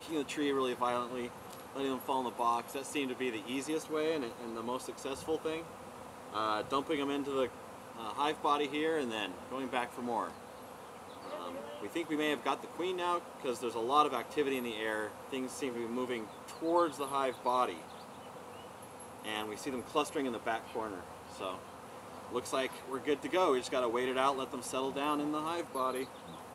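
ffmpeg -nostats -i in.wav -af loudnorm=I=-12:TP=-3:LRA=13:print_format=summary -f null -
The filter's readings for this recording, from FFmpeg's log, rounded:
Input Integrated:    -35.4 LUFS
Input True Peak:     -14.1 dBTP
Input LRA:             4.8 LU
Input Threshold:     -45.9 LUFS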